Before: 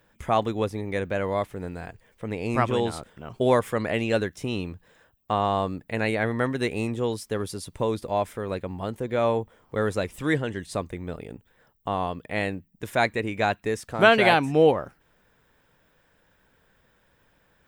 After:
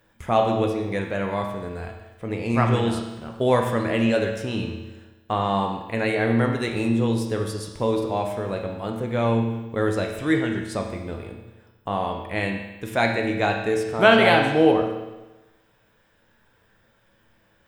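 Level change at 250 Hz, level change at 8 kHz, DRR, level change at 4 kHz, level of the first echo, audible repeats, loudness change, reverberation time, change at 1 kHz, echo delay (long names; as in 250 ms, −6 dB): +5.0 dB, +0.5 dB, 2.0 dB, +3.0 dB, no echo audible, no echo audible, +2.5 dB, 1.1 s, +2.0 dB, no echo audible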